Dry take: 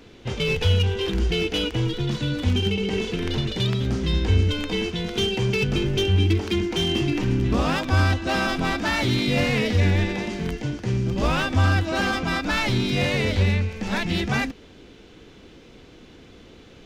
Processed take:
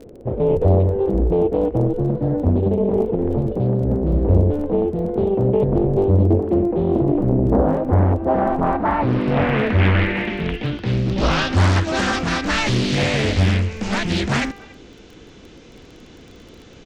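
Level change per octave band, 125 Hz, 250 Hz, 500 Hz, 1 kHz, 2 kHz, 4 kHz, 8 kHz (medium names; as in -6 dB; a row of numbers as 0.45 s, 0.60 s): +3.5 dB, +5.5 dB, +7.5 dB, +5.5 dB, +0.5 dB, -3.5 dB, +1.0 dB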